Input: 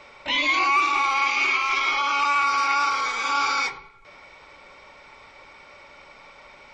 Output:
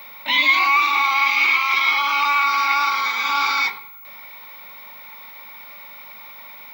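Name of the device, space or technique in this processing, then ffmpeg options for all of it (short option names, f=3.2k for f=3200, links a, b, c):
old television with a line whistle: -af "highpass=f=190:w=0.5412,highpass=f=190:w=1.3066,equalizer=f=200:t=q:w=4:g=9,equalizer=f=350:t=q:w=4:g=-7,equalizer=f=510:t=q:w=4:g=-6,equalizer=f=970:t=q:w=4:g=6,equalizer=f=2.1k:t=q:w=4:g=7,equalizer=f=3.8k:t=q:w=4:g=9,lowpass=f=6.6k:w=0.5412,lowpass=f=6.6k:w=1.3066,aeval=exprs='val(0)+0.0112*sin(2*PI*15625*n/s)':c=same"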